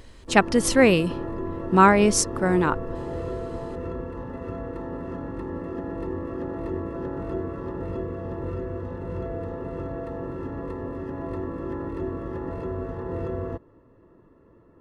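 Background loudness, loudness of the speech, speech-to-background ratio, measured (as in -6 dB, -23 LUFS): -32.5 LUFS, -20.0 LUFS, 12.5 dB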